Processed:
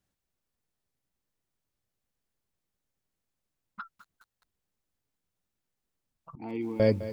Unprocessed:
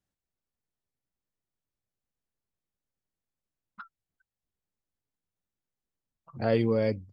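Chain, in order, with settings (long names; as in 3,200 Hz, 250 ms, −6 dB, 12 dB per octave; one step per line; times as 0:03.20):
0:06.35–0:06.80: formant filter u
dynamic equaliser 2,100 Hz, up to −3 dB, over −46 dBFS, Q 0.88
feedback echo at a low word length 208 ms, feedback 55%, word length 9 bits, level −14 dB
level +5 dB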